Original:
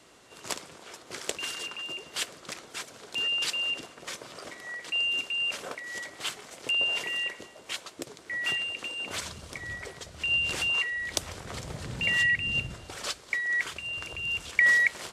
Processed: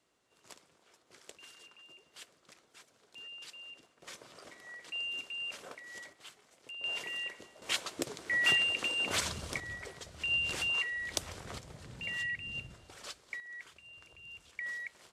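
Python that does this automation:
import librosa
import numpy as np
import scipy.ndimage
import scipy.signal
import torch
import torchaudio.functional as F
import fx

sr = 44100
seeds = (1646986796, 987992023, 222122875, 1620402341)

y = fx.gain(x, sr, db=fx.steps((0.0, -19.5), (4.02, -10.0), (6.13, -18.5), (6.84, -7.5), (7.62, 2.5), (9.6, -5.0), (11.58, -12.0), (13.4, -19.0)))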